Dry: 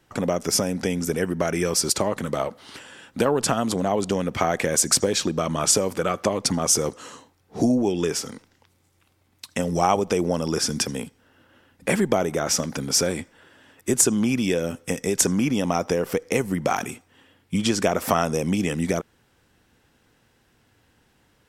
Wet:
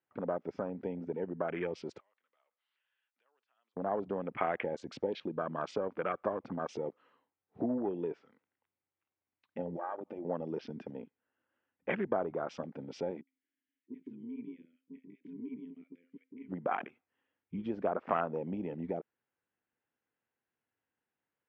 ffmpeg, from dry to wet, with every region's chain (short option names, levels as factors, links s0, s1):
-filter_complex "[0:a]asettb=1/sr,asplit=3[s0][s1][s2];[s0]atrim=end=2.004[s3];[s1]atrim=start=2:end=3.77,asetpts=PTS-STARTPTS,afade=t=in:d=0.004:c=qsin,afade=t=out:st=1.766:d=0.004:c=qsin,highpass=270,aderivative,acompressor=threshold=0.00398:ratio=2.5:attack=3.2:release=140:knee=1:detection=peak[s4];[s2]atrim=start=3.766[s5];[s3][s4]acrossfade=d=0.004:c1=hsin:c2=qsin[s6];[s6][s5]acrossfade=d=0.004:c1=qsin:c2=hsin,asettb=1/sr,asplit=3[s7][s8][s9];[s7]atrim=end=9.764[s10];[s8]atrim=start=9.76:end=10.25,asetpts=PTS-STARTPTS,afade=t=in:d=0.004:c=qsin,afade=t=out:st=0.486:d=0.004:c=qsin,aecho=1:1:3.4:0.68,atrim=end_sample=21609,acompressor=threshold=0.0355:ratio=2.5:attack=3.2:release=140:knee=1:detection=peak[s11];[s9]atrim=start=10.246[s12];[s10][s11]acrossfade=d=0.004:c1=hsin:c2=qsin[s13];[s13][s12]acrossfade=d=0.004:c1=qsin:c2=hsin,asettb=1/sr,asplit=3[s14][s15][s16];[s14]atrim=end=13.214[s17];[s15]atrim=start=13.21:end=16.49,asetpts=PTS-STARTPTS,afade=t=in:d=0.004:c=qsin,afade=t=out:st=3.276:d=0.004:c=qsin,asplit=3[s18][s19][s20];[s18]bandpass=f=270:t=q:w=8,volume=1[s21];[s19]bandpass=f=2290:t=q:w=8,volume=0.501[s22];[s20]bandpass=f=3010:t=q:w=8,volume=0.355[s23];[s21][s22][s23]amix=inputs=3:normalize=0,bandreject=f=262.2:t=h:w=4,bandreject=f=524.4:t=h:w=4,bandreject=f=786.6:t=h:w=4,bandreject=f=1048.8:t=h:w=4,bandreject=f=1311:t=h:w=4,bandreject=f=1573.2:t=h:w=4,bandreject=f=1835.4:t=h:w=4,bandreject=f=2097.6:t=h:w=4,bandreject=f=2359.8:t=h:w=4,bandreject=f=2622:t=h:w=4,bandreject=f=2884.2:t=h:w=4,bandreject=f=3146.4:t=h:w=4,bandreject=f=3408.6:t=h:w=4,bandreject=f=3670.8:t=h:w=4,bandreject=f=3933:t=h:w=4,bandreject=f=4195.2:t=h:w=4,bandreject=f=4457.4:t=h:w=4,bandreject=f=4719.6:t=h:w=4,bandreject=f=4981.8:t=h:w=4,bandreject=f=5244:t=h:w=4,bandreject=f=5506.2:t=h:w=4,bandreject=f=5768.4:t=h:w=4,bandreject=f=6030.6:t=h:w=4,bandreject=f=6292.8:t=h:w=4,bandreject=f=6555:t=h:w=4,bandreject=f=6817.2:t=h:w=4,bandreject=f=7079.4:t=h:w=4,bandreject=f=7341.6:t=h:w=4,bandreject=f=7603.8:t=h:w=4,bandreject=f=7866:t=h:w=4,acrossover=split=600[s24][s25];[s25]adelay=60[s26];[s24][s26]amix=inputs=2:normalize=0,atrim=end_sample=144648[s27];[s16]atrim=start=16.486[s28];[s17][s27]acrossfade=d=0.004:c1=hsin:c2=qsin[s29];[s29][s28]acrossfade=d=0.004:c1=qsin:c2=hsin,highpass=f=380:p=1,afwtdn=0.0398,lowpass=f=2700:w=0.5412,lowpass=f=2700:w=1.3066,volume=0.376"